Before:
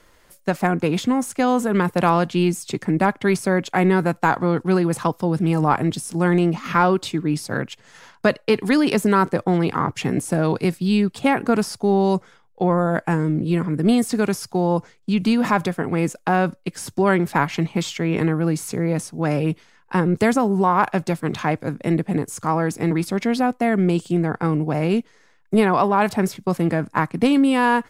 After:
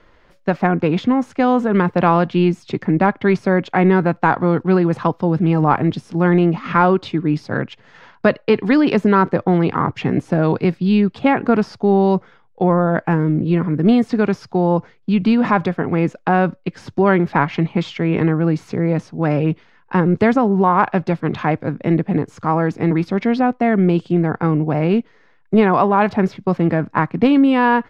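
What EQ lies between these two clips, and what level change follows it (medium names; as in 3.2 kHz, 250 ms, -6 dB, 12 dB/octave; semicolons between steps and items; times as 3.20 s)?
distance through air 240 m; +4.0 dB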